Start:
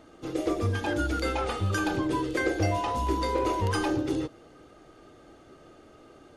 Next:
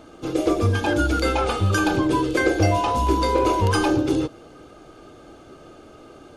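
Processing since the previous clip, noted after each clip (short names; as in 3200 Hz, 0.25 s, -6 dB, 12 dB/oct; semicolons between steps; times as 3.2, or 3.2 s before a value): notch 1900 Hz, Q 7.7; gain +7.5 dB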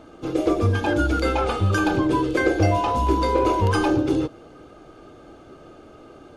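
high shelf 3700 Hz -7 dB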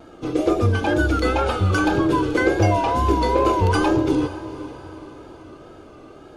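wow and flutter 70 cents; diffused feedback echo 0.484 s, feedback 45%, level -15 dB; gain +1.5 dB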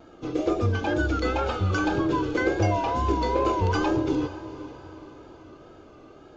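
downsampling 16000 Hz; gain -5.5 dB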